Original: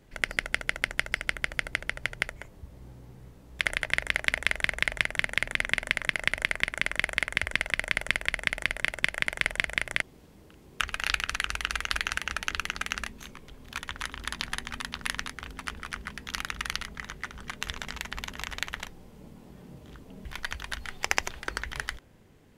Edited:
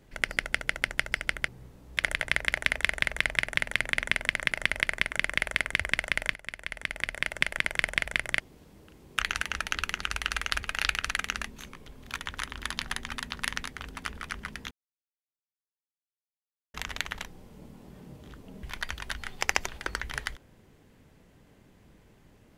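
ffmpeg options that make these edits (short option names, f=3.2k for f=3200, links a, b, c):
-filter_complex "[0:a]asplit=9[a][b][c][d][e][f][g][h][i];[a]atrim=end=1.482[j];[b]atrim=start=3.098:end=7.97,asetpts=PTS-STARTPTS,afade=t=out:st=4.868:d=0.004:c=hsin:silence=0.149624[k];[c]atrim=start=7.97:end=10.862,asetpts=PTS-STARTPTS,afade=t=in:d=1.09:silence=0.149624[l];[d]atrim=start=11.998:end=12.792[m];[e]atrim=start=11.418:end=12.002[n];[f]atrim=start=10.858:end=11.422[o];[g]atrim=start=12.788:end=16.33,asetpts=PTS-STARTPTS,afade=t=out:st=3.538:d=0.004:c=hsin[p];[h]atrim=start=16.33:end=18.36,asetpts=PTS-STARTPTS,volume=0[q];[i]atrim=start=18.36,asetpts=PTS-STARTPTS,afade=t=in:d=0.004:c=hsin[r];[k][l]concat=n=2:v=0:a=1[s];[j][s]acrossfade=d=0.004:c1=hsin:c2=hsin[t];[t][m]acrossfade=d=0.004:c1=hsin:c2=hsin[u];[u][n]acrossfade=d=0.004:c1=hsin:c2=hsin[v];[v][o]acrossfade=d=0.004:c1=hsin:c2=hsin[w];[p][q][r]concat=n=3:v=0:a=1[x];[w][x]acrossfade=d=0.004:c1=hsin:c2=hsin"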